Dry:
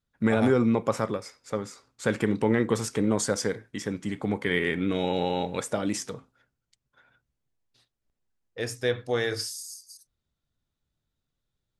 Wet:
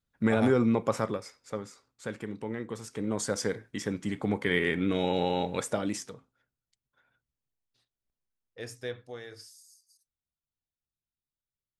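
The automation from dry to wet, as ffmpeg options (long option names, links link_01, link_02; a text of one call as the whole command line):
ffmpeg -i in.wav -af "volume=9.5dB,afade=type=out:start_time=1.04:duration=1.15:silence=0.298538,afade=type=in:start_time=2.83:duration=0.8:silence=0.266073,afade=type=out:start_time=5.7:duration=0.46:silence=0.398107,afade=type=out:start_time=8.78:duration=0.42:silence=0.398107" out.wav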